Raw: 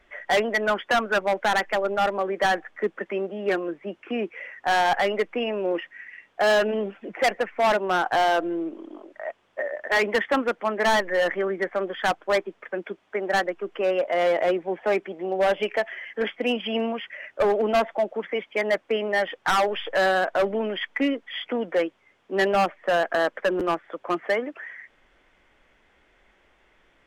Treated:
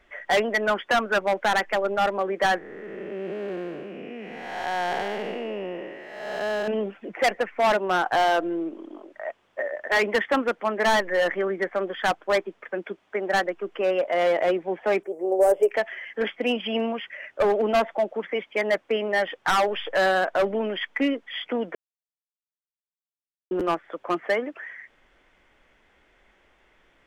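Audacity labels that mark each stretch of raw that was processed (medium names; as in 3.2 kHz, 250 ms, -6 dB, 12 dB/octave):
2.580000	6.680000	spectral blur width 466 ms
15.030000	15.710000	FFT filter 120 Hz 0 dB, 220 Hz -17 dB, 420 Hz +8 dB, 3.5 kHz -22 dB, 8.4 kHz +14 dB
21.750000	23.510000	mute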